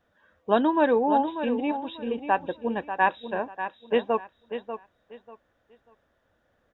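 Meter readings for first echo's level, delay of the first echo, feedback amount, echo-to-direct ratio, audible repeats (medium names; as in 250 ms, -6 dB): -10.0 dB, 591 ms, 24%, -9.5 dB, 3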